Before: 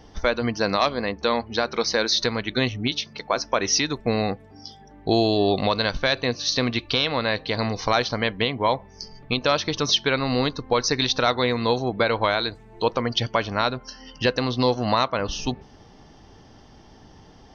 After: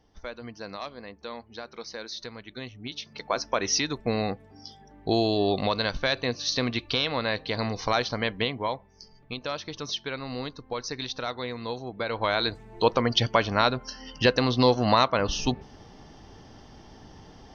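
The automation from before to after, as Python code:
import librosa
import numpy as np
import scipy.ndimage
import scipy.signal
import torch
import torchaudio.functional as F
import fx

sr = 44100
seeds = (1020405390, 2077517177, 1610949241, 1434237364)

y = fx.gain(x, sr, db=fx.line((2.75, -16.0), (3.2, -4.0), (8.47, -4.0), (8.87, -11.5), (11.95, -11.5), (12.49, 0.5)))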